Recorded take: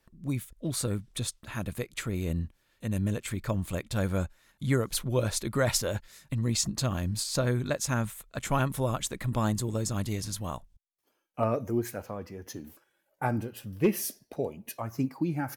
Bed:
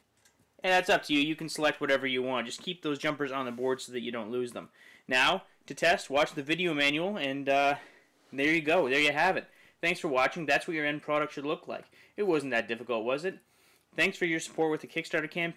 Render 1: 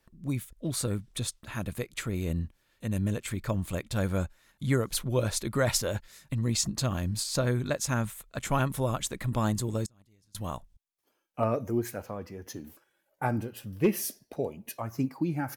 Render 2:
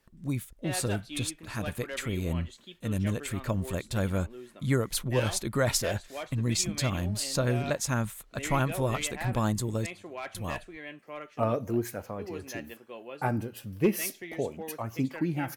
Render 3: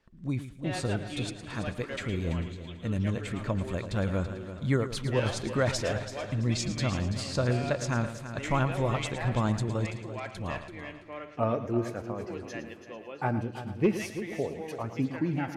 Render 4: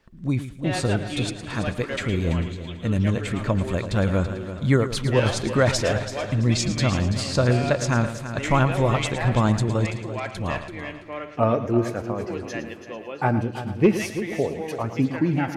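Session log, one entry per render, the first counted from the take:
9.86–10.35 gate -25 dBFS, range -32 dB
add bed -12.5 dB
air absorption 94 m; multi-head echo 0.111 s, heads first and third, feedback 43%, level -12 dB
gain +7.5 dB

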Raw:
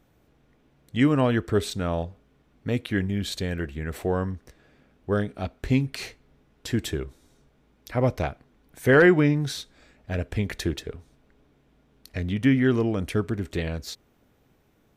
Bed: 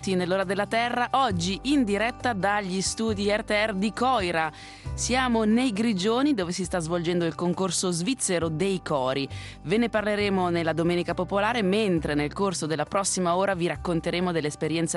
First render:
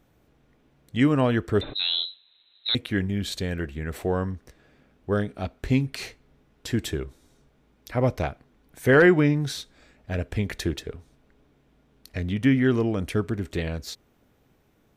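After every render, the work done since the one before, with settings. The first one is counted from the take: 1.61–2.75 inverted band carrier 4000 Hz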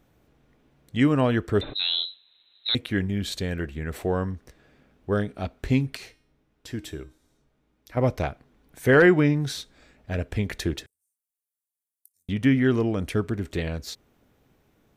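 5.97–7.97 resonator 310 Hz, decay 0.52 s; 10.86–12.29 inverse Chebyshev high-pass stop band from 3000 Hz, stop band 60 dB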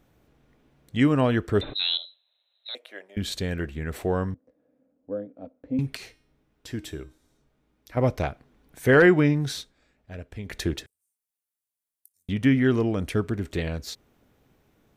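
1.97–3.17 ladder high-pass 540 Hz, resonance 70%; 4.34–5.79 double band-pass 380 Hz, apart 0.85 oct; 9.58–10.59 dip -10.5 dB, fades 0.16 s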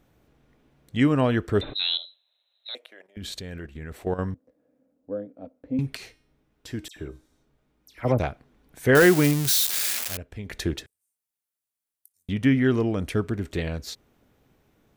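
2.86–4.19 level quantiser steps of 12 dB; 6.88–8.19 dispersion lows, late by 82 ms, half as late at 2600 Hz; 8.95–10.17 switching spikes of -14.5 dBFS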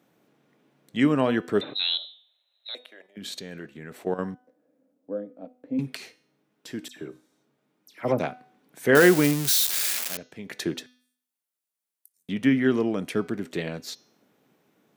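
HPF 160 Hz 24 dB/oct; de-hum 249.8 Hz, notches 27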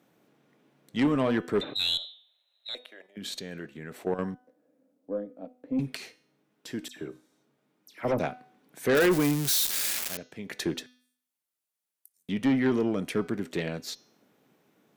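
tube stage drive 18 dB, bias 0.2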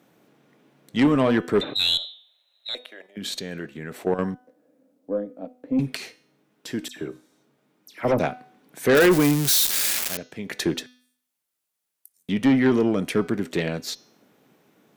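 gain +6 dB

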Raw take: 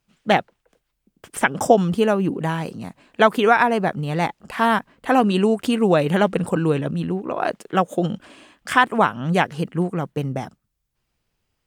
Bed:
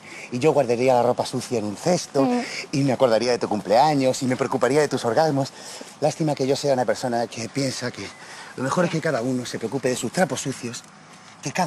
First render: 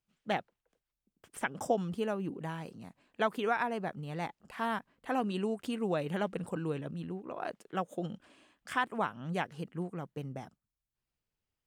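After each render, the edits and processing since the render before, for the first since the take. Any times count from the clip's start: gain -15.5 dB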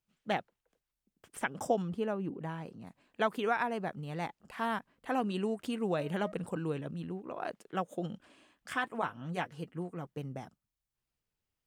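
1.82–2.87 high shelf 3200 Hz -9.5 dB; 5.22–6.32 de-hum 313.1 Hz, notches 7; 8.74–10.07 notch comb 200 Hz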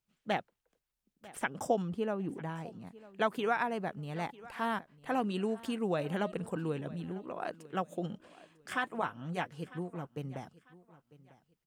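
feedback echo 0.948 s, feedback 27%, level -20 dB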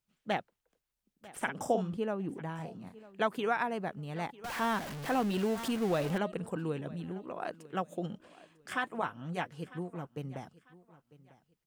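1.31–1.97 doubler 48 ms -8 dB; 2.56–3.03 doubler 32 ms -6 dB; 4.44–6.18 zero-crossing step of -35.5 dBFS

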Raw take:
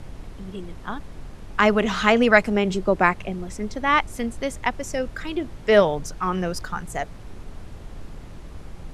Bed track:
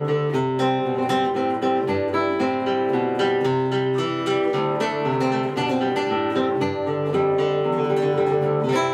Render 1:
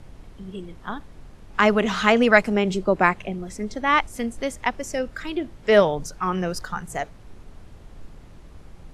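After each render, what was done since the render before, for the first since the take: noise print and reduce 6 dB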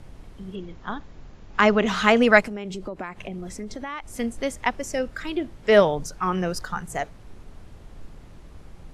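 0.55–1.87 brick-wall FIR low-pass 7400 Hz; 2.4–4.16 compressor 8:1, threshold -29 dBFS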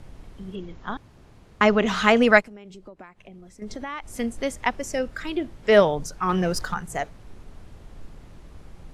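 0.97–1.61 room tone; 2.34–3.62 upward expander, over -43 dBFS; 6.29–6.74 sample leveller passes 1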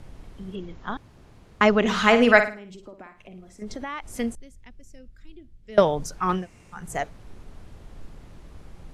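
1.8–3.63 flutter echo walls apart 9.3 m, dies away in 0.36 s; 4.35–5.78 passive tone stack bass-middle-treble 10-0-1; 6.39–6.79 room tone, crossfade 0.16 s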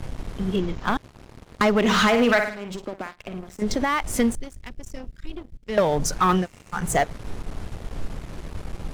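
compressor 4:1, threshold -26 dBFS, peak gain reduction 14 dB; sample leveller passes 3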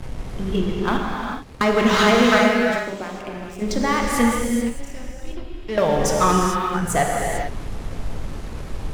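non-linear reverb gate 0.47 s flat, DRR -1.5 dB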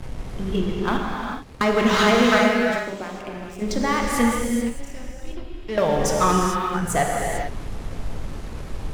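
gain -1.5 dB

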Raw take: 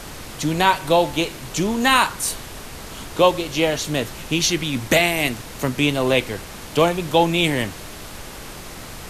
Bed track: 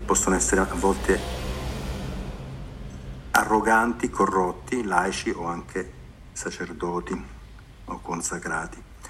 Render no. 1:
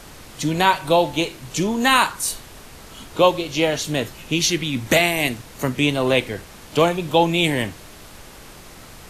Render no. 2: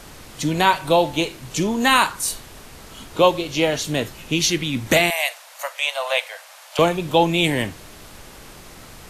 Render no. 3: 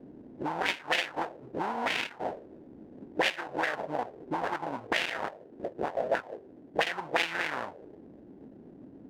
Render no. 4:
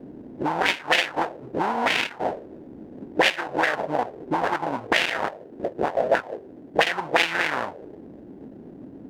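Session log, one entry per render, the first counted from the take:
noise print and reduce 6 dB
5.1–6.79 steep high-pass 550 Hz 72 dB/oct
sample-rate reducer 1200 Hz, jitter 20%; auto-wah 240–2600 Hz, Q 2.6, up, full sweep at -12.5 dBFS
gain +8 dB; limiter -3 dBFS, peak gain reduction 1 dB

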